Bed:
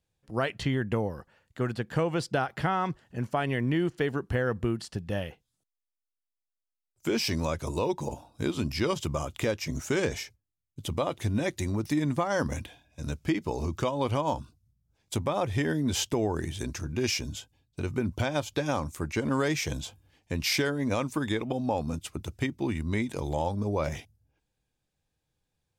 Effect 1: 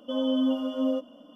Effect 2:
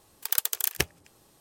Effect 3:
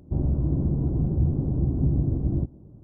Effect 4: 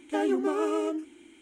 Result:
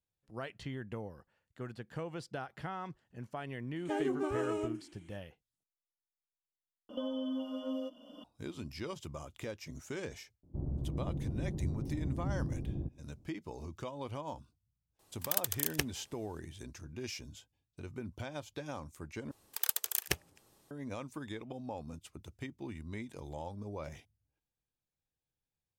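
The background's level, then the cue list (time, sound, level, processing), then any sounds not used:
bed -13.5 dB
3.76 add 4 -7.5 dB
6.89 replace with 1 -12 dB + three-band squash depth 100%
10.43 add 3 -13 dB + Doppler distortion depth 0.47 ms
14.99 add 2 -7 dB
19.31 replace with 2 -6.5 dB

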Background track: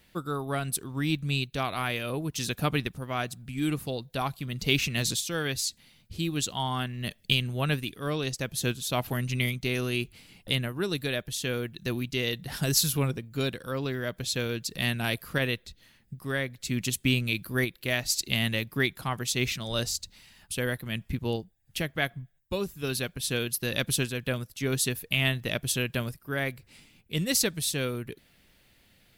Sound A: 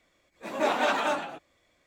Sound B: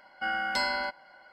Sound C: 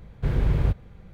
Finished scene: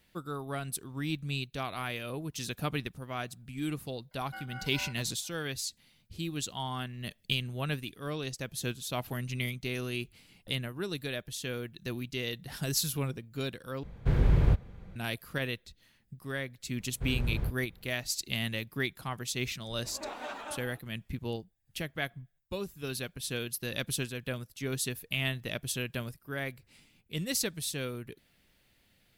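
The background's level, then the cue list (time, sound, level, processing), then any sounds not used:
background track -6 dB
4.11 add B -12 dB + beating tremolo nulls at 4.2 Hz
13.83 replace with C -1.5 dB
16.78 add C -10.5 dB
19.41 add A -15 dB

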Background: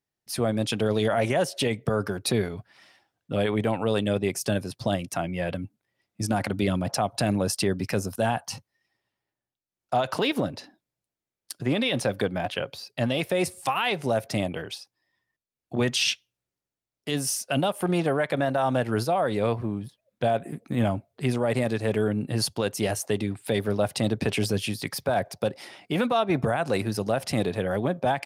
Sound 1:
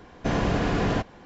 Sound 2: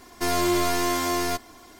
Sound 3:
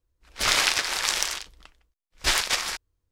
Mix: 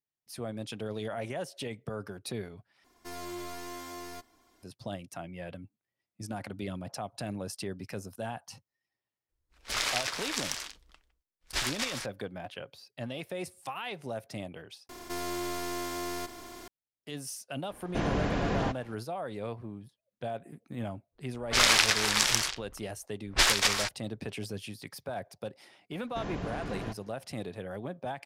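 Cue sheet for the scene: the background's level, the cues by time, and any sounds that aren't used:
background -12.5 dB
2.84 replace with 2 -17.5 dB
9.29 add 3 -9 dB
14.89 replace with 2 -14 dB + per-bin compression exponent 0.4
17.7 add 1 -5.5 dB
21.12 add 3 -0.5 dB + low-pass opened by the level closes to 960 Hz, open at -24 dBFS
25.91 add 1 -13.5 dB

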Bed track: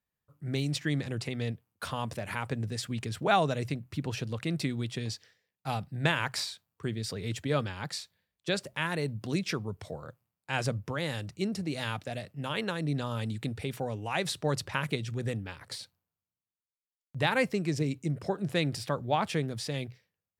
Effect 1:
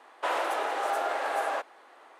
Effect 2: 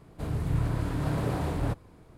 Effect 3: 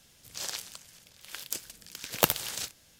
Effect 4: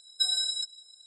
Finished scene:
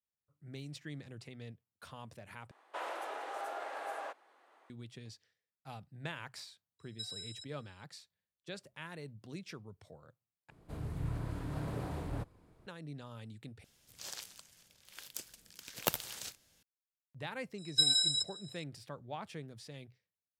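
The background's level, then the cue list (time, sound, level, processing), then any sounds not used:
bed track -15 dB
2.51 replace with 1 -12 dB
6.79 add 4 -17.5 dB
10.5 replace with 2 -10 dB
13.64 replace with 3 -9 dB
17.58 add 4 -0.5 dB

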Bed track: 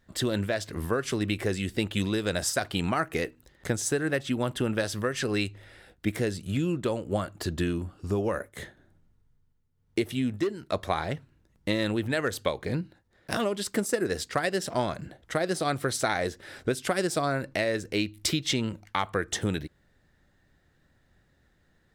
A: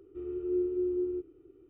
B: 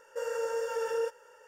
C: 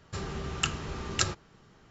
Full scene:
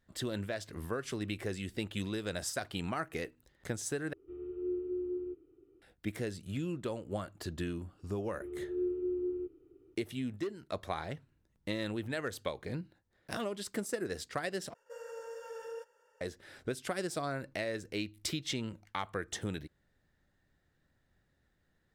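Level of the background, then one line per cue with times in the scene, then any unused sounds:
bed track -9 dB
4.13 replace with A -6 dB
8.26 add A -4 dB
14.74 replace with B -12.5 dB + gate with hold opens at -49 dBFS, closes at -55 dBFS, hold 27 ms, range -11 dB
not used: C

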